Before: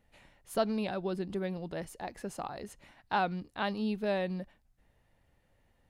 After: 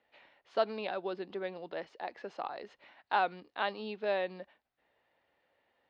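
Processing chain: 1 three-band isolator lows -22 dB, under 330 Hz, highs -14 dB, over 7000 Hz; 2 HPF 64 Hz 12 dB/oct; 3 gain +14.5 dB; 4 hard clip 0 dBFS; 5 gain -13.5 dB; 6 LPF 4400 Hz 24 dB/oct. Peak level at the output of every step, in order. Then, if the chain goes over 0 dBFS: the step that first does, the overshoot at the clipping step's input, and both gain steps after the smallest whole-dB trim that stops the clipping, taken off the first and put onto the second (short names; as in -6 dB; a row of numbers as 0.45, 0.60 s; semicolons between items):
-17.5, -17.0, -2.5, -2.5, -16.0, -16.5 dBFS; no overload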